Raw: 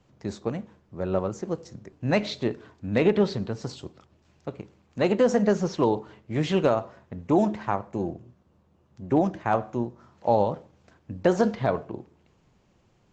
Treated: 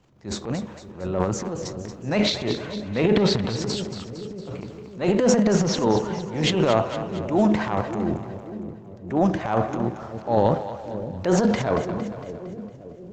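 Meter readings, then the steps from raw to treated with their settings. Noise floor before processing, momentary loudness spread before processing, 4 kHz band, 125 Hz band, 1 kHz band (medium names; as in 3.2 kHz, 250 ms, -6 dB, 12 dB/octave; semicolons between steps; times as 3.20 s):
-64 dBFS, 18 LU, +10.0 dB, +4.5 dB, +2.0 dB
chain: transient shaper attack -9 dB, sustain +11 dB; two-band feedback delay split 540 Hz, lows 569 ms, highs 229 ms, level -10.5 dB; trim +2 dB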